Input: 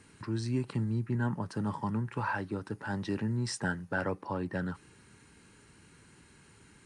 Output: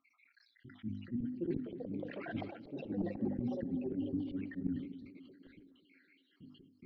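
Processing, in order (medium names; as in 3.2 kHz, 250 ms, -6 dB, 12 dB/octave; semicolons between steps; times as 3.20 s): random holes in the spectrogram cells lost 74%; vowel filter i; ever faster or slower copies 622 ms, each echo +6 st, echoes 3, each echo -6 dB; hum notches 50/100/150/200/250/300 Hz; slow attack 203 ms; reverse; compression 10:1, threshold -55 dBFS, peak gain reduction 11 dB; reverse; steep low-pass 4.7 kHz; tilt EQ -4 dB/octave; band-stop 410 Hz, Q 13; band-passed feedback delay 250 ms, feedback 61%, band-pass 370 Hz, level -12 dB; on a send at -23 dB: reverberation RT60 0.35 s, pre-delay 47 ms; on the sum: decay stretcher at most 70 dB/s; trim +15.5 dB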